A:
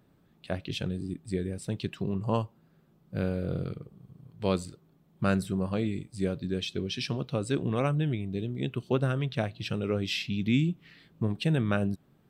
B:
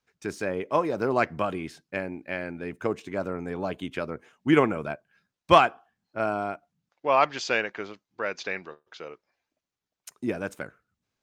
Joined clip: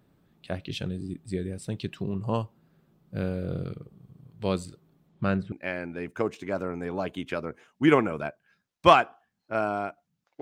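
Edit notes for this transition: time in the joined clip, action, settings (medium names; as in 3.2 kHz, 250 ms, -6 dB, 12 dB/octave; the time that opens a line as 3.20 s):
A
5.08–5.52 s: low-pass 8.7 kHz -> 1.5 kHz
5.52 s: go over to B from 2.17 s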